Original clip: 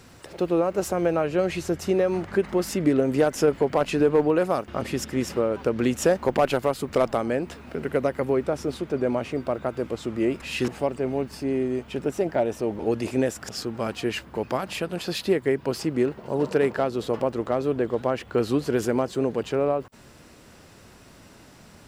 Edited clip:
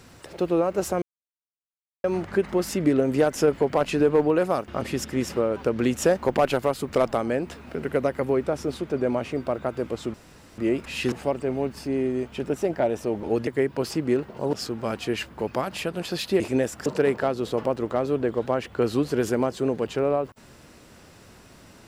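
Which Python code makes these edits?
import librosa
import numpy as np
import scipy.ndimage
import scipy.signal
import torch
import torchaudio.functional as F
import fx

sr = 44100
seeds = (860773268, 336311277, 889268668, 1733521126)

y = fx.edit(x, sr, fx.silence(start_s=1.02, length_s=1.02),
    fx.insert_room_tone(at_s=10.14, length_s=0.44),
    fx.swap(start_s=13.03, length_s=0.46, other_s=15.36, other_length_s=1.06), tone=tone)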